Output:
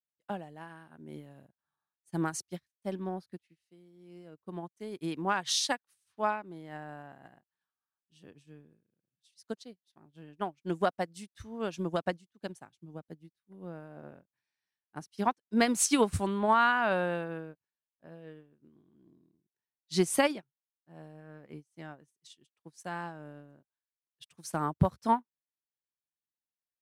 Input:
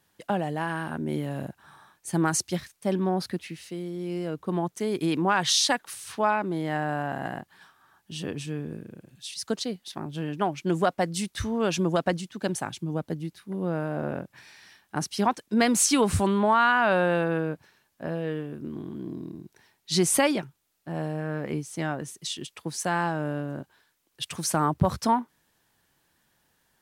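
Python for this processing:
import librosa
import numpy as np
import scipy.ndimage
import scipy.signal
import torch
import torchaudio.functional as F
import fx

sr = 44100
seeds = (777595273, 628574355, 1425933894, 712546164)

y = fx.upward_expand(x, sr, threshold_db=-43.0, expansion=2.5)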